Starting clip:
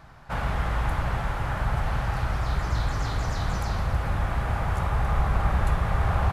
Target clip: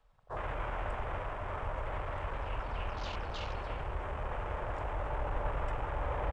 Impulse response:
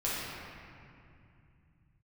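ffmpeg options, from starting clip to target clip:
-filter_complex "[0:a]lowshelf=f=430:g=-6.5,asetrate=32097,aresample=44100,atempo=1.37395,acrossover=split=330|900|1400[a][b][c][d];[d]acontrast=21[e];[a][b][c][e]amix=inputs=4:normalize=0,afwtdn=0.0112,volume=-6dB"

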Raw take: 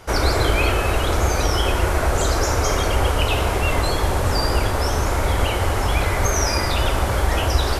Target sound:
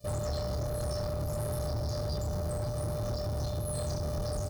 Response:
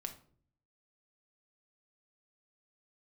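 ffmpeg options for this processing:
-filter_complex "[0:a]areverse,acompressor=mode=upward:threshold=-35dB:ratio=2.5,areverse,acrusher=bits=5:mix=0:aa=0.5,firequalizer=gain_entry='entry(170,0);entry(700,-28);entry(1100,-30);entry(2600,-11)':delay=0.05:min_phase=1,afftfilt=real='hypot(re,im)*cos(PI*b)':imag='0':win_size=512:overlap=0.75,highpass=49,asetrate=76440,aresample=44100,lowshelf=f=450:g=7,acompressor=threshold=-28dB:ratio=6,asplit=2[a][b];[b]adelay=27,volume=-5dB[c];[a][c]amix=inputs=2:normalize=0,asoftclip=type=tanh:threshold=-33dB,volume=3.5dB"

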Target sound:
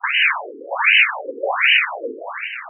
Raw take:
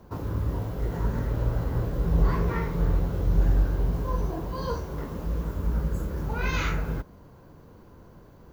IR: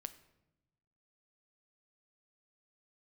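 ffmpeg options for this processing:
-filter_complex "[0:a]equalizer=f=2.2k:w=0.45:g=7.5,acrossover=split=160|760[a][b][c];[b]dynaudnorm=f=610:g=3:m=11dB[d];[a][d][c]amix=inputs=3:normalize=0,flanger=delay=7.7:depth=3.4:regen=72:speed=1:shape=sinusoidal,aresample=11025,aeval=exprs='sgn(val(0))*max(abs(val(0))-0.00316,0)':c=same,aresample=44100,asetrate=139356,aresample=44100,volume=18.5dB,asoftclip=hard,volume=-18.5dB,lowpass=f=3.2k:t=q:w=0.5098,lowpass=f=3.2k:t=q:w=0.6013,lowpass=f=3.2k:t=q:w=0.9,lowpass=f=3.2k:t=q:w=2.563,afreqshift=-3800,adynamicsmooth=sensitivity=6:basefreq=1.7k[e];[1:a]atrim=start_sample=2205[f];[e][f]afir=irnorm=-1:irlink=0,asplit=2[g][h];[h]highpass=f=720:p=1,volume=15dB,asoftclip=type=tanh:threshold=-19.5dB[i];[g][i]amix=inputs=2:normalize=0,lowpass=f=2.3k:p=1,volume=-6dB,alimiter=level_in=30dB:limit=-1dB:release=50:level=0:latency=1,afftfilt=real='re*between(b*sr/1024,350*pow(2200/350,0.5+0.5*sin(2*PI*1.3*pts/sr))/1.41,350*pow(2200/350,0.5+0.5*sin(2*PI*1.3*pts/sr))*1.41)':imag='im*between(b*sr/1024,350*pow(2200/350,0.5+0.5*sin(2*PI*1.3*pts/sr))/1.41,350*pow(2200/350,0.5+0.5*sin(2*PI*1.3*pts/sr))*1.41)':win_size=1024:overlap=0.75,volume=-1dB"

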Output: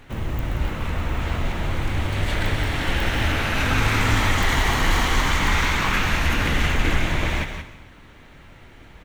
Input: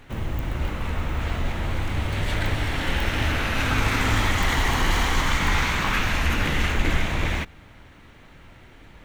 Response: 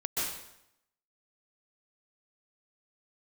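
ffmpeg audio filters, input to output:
-filter_complex "[0:a]aecho=1:1:177:0.355,asplit=2[a][b];[1:a]atrim=start_sample=2205[c];[b][c]afir=irnorm=-1:irlink=0,volume=-16dB[d];[a][d]amix=inputs=2:normalize=0"

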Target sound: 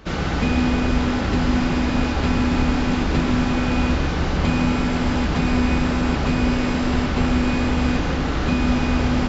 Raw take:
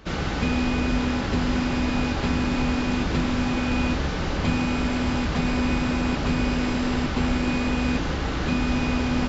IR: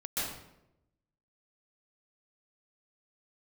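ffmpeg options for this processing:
-filter_complex "[0:a]asplit=2[a][b];[1:a]atrim=start_sample=2205,lowpass=2.6k[c];[b][c]afir=irnorm=-1:irlink=0,volume=-11dB[d];[a][d]amix=inputs=2:normalize=0,volume=2dB"

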